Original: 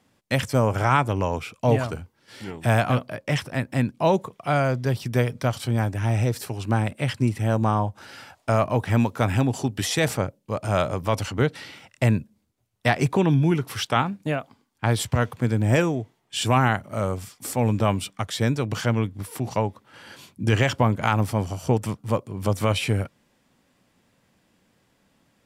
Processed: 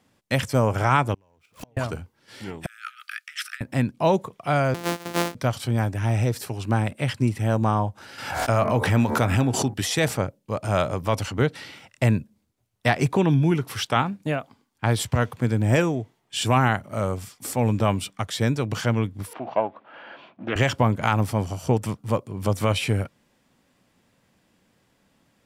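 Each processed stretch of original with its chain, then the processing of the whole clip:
0:01.14–0:01.77: converter with a step at zero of −35.5 dBFS + downward compressor 5 to 1, threshold −23 dBFS + gate with flip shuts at −23 dBFS, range −33 dB
0:02.66–0:03.61: compressor whose output falls as the input rises −33 dBFS + linear-phase brick-wall high-pass 1,200 Hz
0:04.74–0:05.35: samples sorted by size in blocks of 256 samples + high-pass filter 260 Hz
0:08.18–0:09.74: hum removal 74.45 Hz, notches 31 + background raised ahead of every attack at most 56 dB per second
0:19.33–0:20.56: mu-law and A-law mismatch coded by mu + loudspeaker in its box 340–2,700 Hz, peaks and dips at 430 Hz −5 dB, 660 Hz +8 dB, 2,000 Hz −5 dB + highs frequency-modulated by the lows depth 0.19 ms
whole clip: no processing

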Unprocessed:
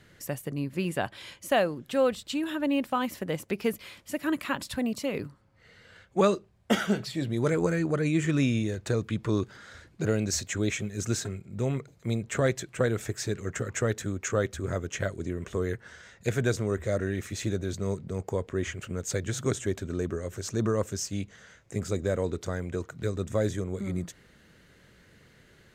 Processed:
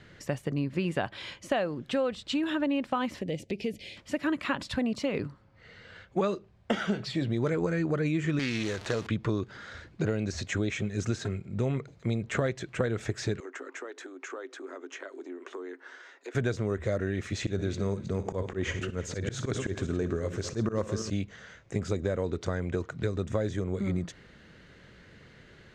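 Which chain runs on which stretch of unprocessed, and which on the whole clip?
0:03.21–0:03.97: Butterworth band-reject 1,200 Hz, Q 0.74 + downward compressor 2 to 1, threshold −35 dBFS
0:08.39–0:09.07: converter with a step at zero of −38 dBFS + spectral tilt +3 dB per octave + highs frequency-modulated by the lows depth 0.25 ms
0:13.40–0:16.35: downward compressor 5 to 1, threshold −35 dBFS + Chebyshev high-pass with heavy ripple 260 Hz, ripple 6 dB
0:17.41–0:21.10: feedback delay that plays each chunk backwards 164 ms, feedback 43%, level −12 dB + volume swells 105 ms + flutter between parallel walls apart 10.3 metres, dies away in 0.21 s
whole clip: de-essing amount 70%; low-pass filter 5,000 Hz 12 dB per octave; downward compressor, threshold −29 dBFS; level +4 dB

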